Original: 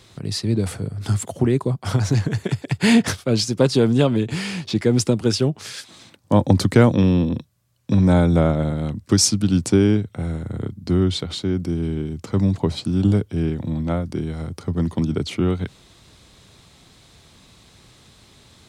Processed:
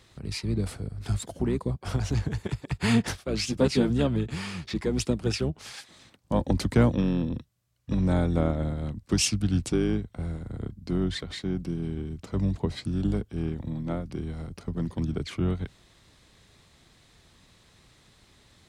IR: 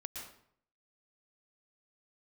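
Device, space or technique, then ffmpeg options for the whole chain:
octave pedal: -filter_complex "[0:a]asettb=1/sr,asplit=3[link_01][link_02][link_03];[link_01]atrim=end=3.424[link_04];[link_02]atrim=start=3.42:end=3.9,asetpts=PTS-STARTPTS,afade=type=in:duration=0.004:curve=qsin,afade=type=out:start_time=0.476:duration=0.004:curve=qsin,asplit=2[link_05][link_06];[link_06]adelay=12,volume=-2dB[link_07];[link_05][link_07]amix=inputs=2:normalize=0,atrim=end_sample=21168[link_08];[link_03]atrim=start=3.896[link_09];[link_04][link_08]acrossfade=duration=0.004:curve1=hsin:curve2=qsin[link_10];[link_10][link_09]acrossfade=duration=0.004:curve1=qsin:curve2=hsin,asplit=2[link_11][link_12];[link_12]asetrate=22050,aresample=44100,atempo=2,volume=-5dB[link_13];[link_11][link_13]amix=inputs=2:normalize=0,volume=-9dB"

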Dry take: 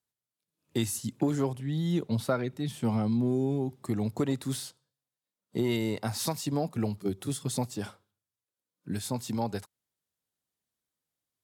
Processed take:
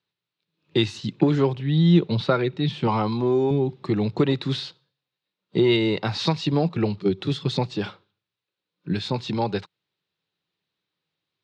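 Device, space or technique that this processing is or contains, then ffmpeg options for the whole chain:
guitar cabinet: -filter_complex "[0:a]highpass=110,equalizer=frequency=170:width_type=q:width=4:gain=6,equalizer=frequency=240:width_type=q:width=4:gain=-8,equalizer=frequency=360:width_type=q:width=4:gain=4,equalizer=frequency=670:width_type=q:width=4:gain=-5,equalizer=frequency=2600:width_type=q:width=4:gain=5,equalizer=frequency=3900:width_type=q:width=4:gain=6,lowpass=frequency=4400:width=0.5412,lowpass=frequency=4400:width=1.3066,asettb=1/sr,asplit=3[link_01][link_02][link_03];[link_01]atrim=end=2.874[link_04];[link_02]atrim=start=2.87:end=3.51,asetpts=PTS-STARTPTS,afade=type=in:duration=0.004:curve=qsin,afade=type=out:start_time=0.636:duration=0.004:curve=qsin,equalizer=frequency=160:width_type=o:width=0.67:gain=-11,equalizer=frequency=1000:width_type=o:width=0.67:gain=11,equalizer=frequency=6300:width_type=o:width=0.67:gain=7[link_05];[link_03]atrim=start=3.506[link_06];[link_04][link_05]acrossfade=duration=0.004:curve1=hsin:curve2=qsin[link_07];[link_07][link_06]acrossfade=duration=0.004:curve1=qsin:curve2=hsin,volume=8.5dB"

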